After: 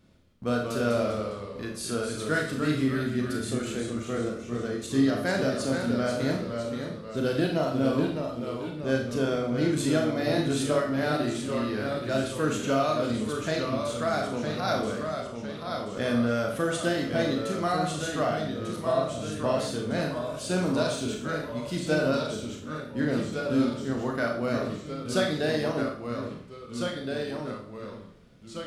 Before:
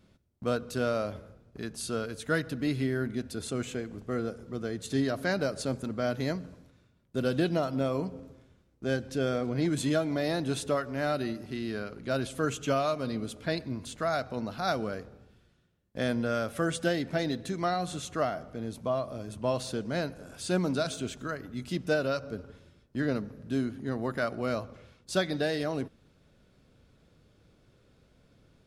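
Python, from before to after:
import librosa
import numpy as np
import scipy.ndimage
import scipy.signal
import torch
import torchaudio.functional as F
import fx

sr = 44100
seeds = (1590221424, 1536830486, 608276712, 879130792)

y = fx.echo_pitch(x, sr, ms=157, semitones=-1, count=3, db_per_echo=-6.0)
y = fx.rev_schroeder(y, sr, rt60_s=0.48, comb_ms=26, drr_db=1.0)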